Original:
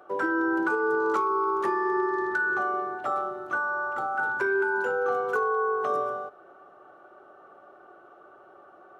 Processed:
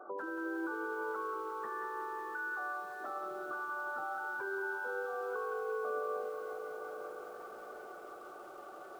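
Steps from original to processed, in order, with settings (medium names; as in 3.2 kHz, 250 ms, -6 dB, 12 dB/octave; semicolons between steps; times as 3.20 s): compression 2:1, threshold -47 dBFS, peak gain reduction 13.5 dB; 0.70–3.00 s: peaking EQ 340 Hz -14.5 dB 0.53 oct; echo that smears into a reverb 1061 ms, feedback 40%, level -13 dB; peak limiter -33 dBFS, peak gain reduction 5 dB; low-pass 2.1 kHz 12 dB/octave; peaking EQ 79 Hz -11 dB 0.87 oct; thinning echo 344 ms, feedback 72%, high-pass 170 Hz, level -15 dB; spectral gate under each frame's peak -25 dB strong; bit-crushed delay 182 ms, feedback 80%, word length 10-bit, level -8.5 dB; trim +1.5 dB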